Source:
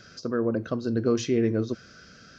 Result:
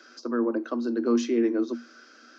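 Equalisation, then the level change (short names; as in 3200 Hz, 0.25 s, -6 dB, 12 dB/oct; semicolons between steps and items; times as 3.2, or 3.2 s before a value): rippled Chebyshev high-pass 230 Hz, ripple 9 dB; notch 700 Hz, Q 12; +5.5 dB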